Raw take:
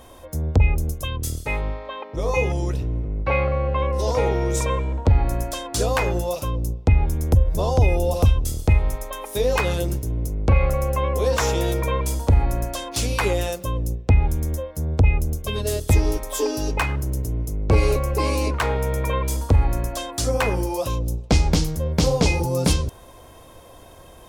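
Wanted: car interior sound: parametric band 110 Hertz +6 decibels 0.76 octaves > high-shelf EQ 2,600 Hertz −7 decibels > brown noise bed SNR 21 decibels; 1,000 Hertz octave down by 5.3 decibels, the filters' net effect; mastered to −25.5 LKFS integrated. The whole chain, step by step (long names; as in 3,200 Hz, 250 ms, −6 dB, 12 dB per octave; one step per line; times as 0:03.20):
parametric band 110 Hz +6 dB 0.76 octaves
parametric band 1,000 Hz −5.5 dB
high-shelf EQ 2,600 Hz −7 dB
brown noise bed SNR 21 dB
level −4 dB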